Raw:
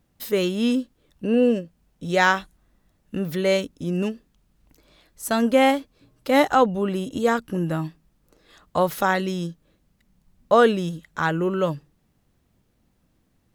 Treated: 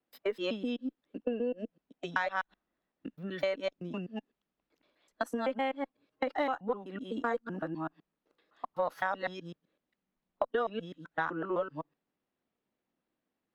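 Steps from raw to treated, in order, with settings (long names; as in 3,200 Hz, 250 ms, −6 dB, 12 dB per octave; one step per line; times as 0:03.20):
reversed piece by piece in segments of 127 ms
noise reduction from a noise print of the clip's start 10 dB
downward compressor 12 to 1, threshold −24 dBFS, peak gain reduction 13.5 dB
three-way crossover with the lows and the highs turned down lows −22 dB, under 230 Hz, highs −19 dB, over 4,300 Hz
harmonic generator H 6 −36 dB, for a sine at −10.5 dBFS
level −3 dB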